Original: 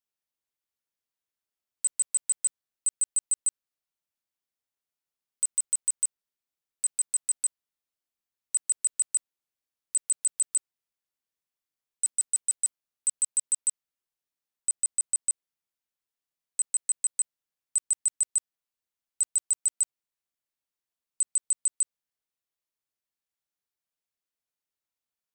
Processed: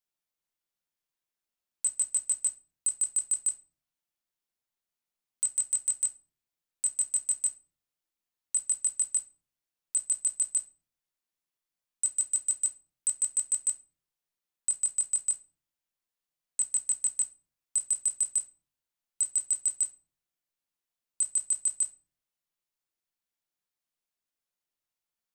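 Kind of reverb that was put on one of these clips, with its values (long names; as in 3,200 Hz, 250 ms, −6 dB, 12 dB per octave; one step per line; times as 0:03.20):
rectangular room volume 230 cubic metres, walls furnished, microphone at 0.89 metres
level −1 dB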